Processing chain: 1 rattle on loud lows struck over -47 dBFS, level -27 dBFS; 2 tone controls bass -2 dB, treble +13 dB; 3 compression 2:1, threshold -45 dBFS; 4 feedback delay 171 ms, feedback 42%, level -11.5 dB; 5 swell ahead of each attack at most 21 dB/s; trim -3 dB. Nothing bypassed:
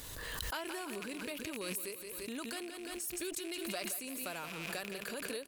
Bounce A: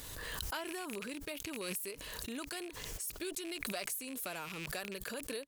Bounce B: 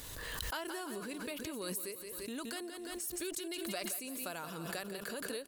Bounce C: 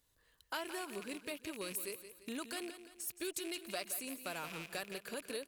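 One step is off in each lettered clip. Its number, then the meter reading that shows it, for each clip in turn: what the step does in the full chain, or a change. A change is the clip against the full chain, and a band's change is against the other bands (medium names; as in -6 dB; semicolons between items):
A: 4, 125 Hz band +2.0 dB; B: 1, 2 kHz band -2.0 dB; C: 5, 125 Hz band -3.5 dB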